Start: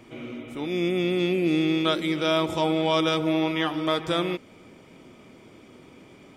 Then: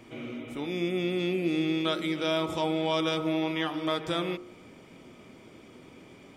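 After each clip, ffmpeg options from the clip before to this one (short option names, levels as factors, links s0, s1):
-filter_complex "[0:a]bandreject=f=51.03:t=h:w=4,bandreject=f=102.06:t=h:w=4,bandreject=f=153.09:t=h:w=4,bandreject=f=204.12:t=h:w=4,bandreject=f=255.15:t=h:w=4,bandreject=f=306.18:t=h:w=4,bandreject=f=357.21:t=h:w=4,bandreject=f=408.24:t=h:w=4,bandreject=f=459.27:t=h:w=4,bandreject=f=510.3:t=h:w=4,bandreject=f=561.33:t=h:w=4,bandreject=f=612.36:t=h:w=4,bandreject=f=663.39:t=h:w=4,bandreject=f=714.42:t=h:w=4,bandreject=f=765.45:t=h:w=4,bandreject=f=816.48:t=h:w=4,bandreject=f=867.51:t=h:w=4,bandreject=f=918.54:t=h:w=4,bandreject=f=969.57:t=h:w=4,bandreject=f=1020.6:t=h:w=4,bandreject=f=1071.63:t=h:w=4,bandreject=f=1122.66:t=h:w=4,bandreject=f=1173.69:t=h:w=4,bandreject=f=1224.72:t=h:w=4,bandreject=f=1275.75:t=h:w=4,bandreject=f=1326.78:t=h:w=4,bandreject=f=1377.81:t=h:w=4,bandreject=f=1428.84:t=h:w=4,bandreject=f=1479.87:t=h:w=4,bandreject=f=1530.9:t=h:w=4,asplit=2[s0][s1];[s1]acompressor=threshold=0.0251:ratio=6,volume=0.944[s2];[s0][s2]amix=inputs=2:normalize=0,volume=0.473"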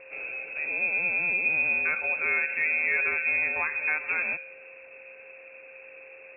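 -af "lowpass=f=2400:t=q:w=0.5098,lowpass=f=2400:t=q:w=0.6013,lowpass=f=2400:t=q:w=0.9,lowpass=f=2400:t=q:w=2.563,afreqshift=-2800,aeval=exprs='val(0)+0.00282*sin(2*PI*530*n/s)':c=same,volume=1.26"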